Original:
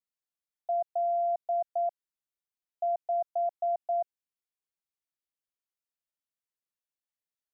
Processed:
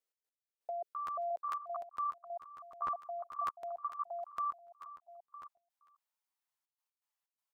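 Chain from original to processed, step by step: pitch shift switched off and on +9 st, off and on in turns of 293 ms; feedback delay 482 ms, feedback 34%, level -4 dB; level held to a coarse grid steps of 19 dB; dynamic bell 780 Hz, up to -6 dB, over -52 dBFS, Q 0.88; high-pass sweep 420 Hz -> 890 Hz, 1.05–1.76 s; trance gate "x.xx.xxxxxxxx." 124 bpm -12 dB; crackling interface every 0.15 s, samples 512, repeat, from 0.91 s; trim +2 dB

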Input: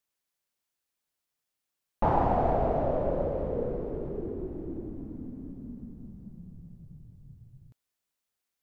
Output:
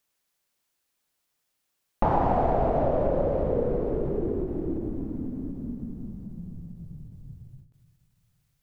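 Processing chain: compression 2.5:1, threshold -29 dBFS, peak gain reduction 6.5 dB; on a send at -17 dB: reverberation RT60 2.1 s, pre-delay 3 ms; on the sum: endings held to a fixed fall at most 120 dB/s; trim +7.5 dB

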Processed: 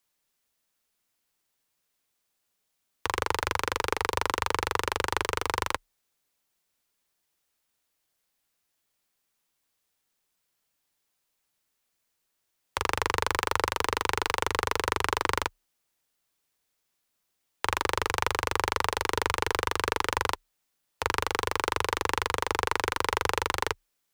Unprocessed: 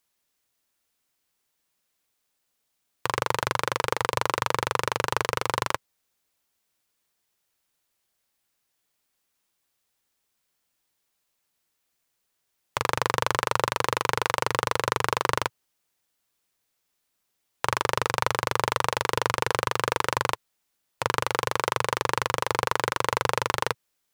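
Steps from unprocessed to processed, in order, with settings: self-modulated delay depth 0.1 ms; frequency shift -33 Hz; trim -1.5 dB

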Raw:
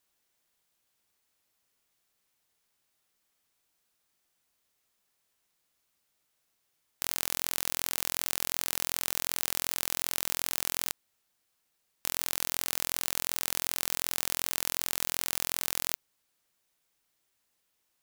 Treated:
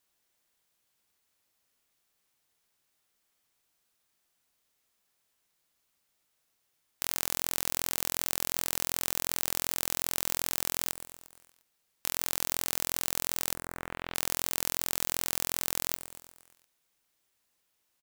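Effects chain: 13.53–14.14 s: low-pass 1.3 kHz -> 3.5 kHz 24 dB/octave; on a send: feedback delay 117 ms, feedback 58%, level -13 dB

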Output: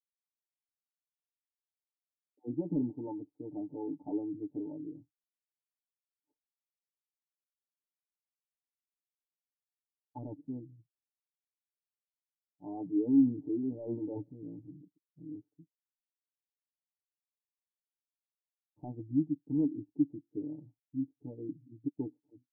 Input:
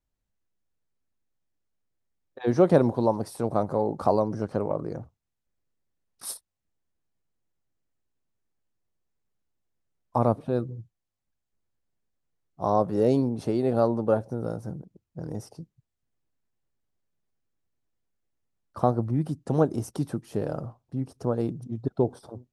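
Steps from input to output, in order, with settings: local Wiener filter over 25 samples; expander -44 dBFS; comb 6.8 ms, depth 81%; 12.82–15.20 s: transient shaper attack -2 dB, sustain +8 dB; hard clipper -16 dBFS, distortion -11 dB; cascade formant filter u; spectral contrast expander 1.5:1; trim +2 dB

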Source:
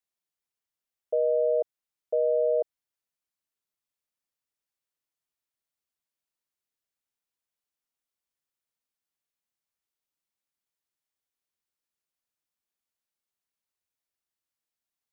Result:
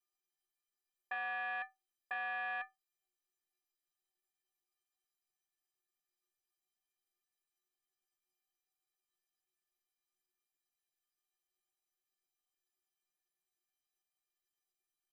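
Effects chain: self-modulated delay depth 0.51 ms; peak limiter -27 dBFS, peak gain reduction 9 dB; pitch shift +7.5 st; inharmonic resonator 360 Hz, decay 0.23 s, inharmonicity 0.03; trim +14 dB

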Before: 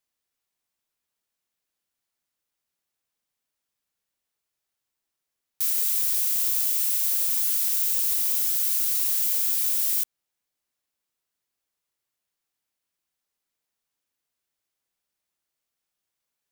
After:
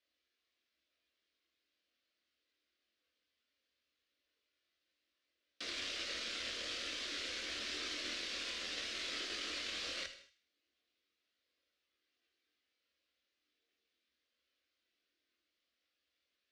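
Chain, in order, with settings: one-sided wavefolder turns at -21.5 dBFS; chorus voices 6, 0.17 Hz, delay 24 ms, depth 1.8 ms; peak limiter -27 dBFS, peak gain reduction 12.5 dB; gated-style reverb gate 250 ms falling, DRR 9 dB; frequency shift -17 Hz; cabinet simulation 100–4400 Hz, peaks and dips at 110 Hz -6 dB, 410 Hz -4 dB, 1 kHz +4 dB; static phaser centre 370 Hz, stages 4; feedback echo behind a high-pass 78 ms, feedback 36%, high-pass 1.9 kHz, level -12 dB; trim +9 dB

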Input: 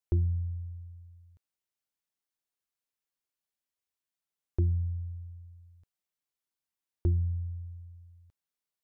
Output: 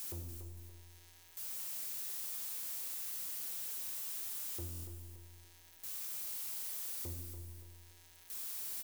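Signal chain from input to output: zero-crossing glitches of -35 dBFS; high-pass 95 Hz 12 dB/octave; bass shelf 470 Hz -9 dB; in parallel at -3 dB: peak limiter -35.5 dBFS, peak gain reduction 10.5 dB; on the sum: saturation -38 dBFS, distortion -11 dB; flange 1.4 Hz, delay 2.6 ms, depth 6.7 ms, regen +79%; on a send: feedback delay 286 ms, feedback 37%, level -9.5 dB; on the sum: Schroeder reverb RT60 1.3 s, combs from 26 ms, DRR 4.5 dB; buffer glitch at 4.70 s, samples 1024, times 5; trim +2 dB

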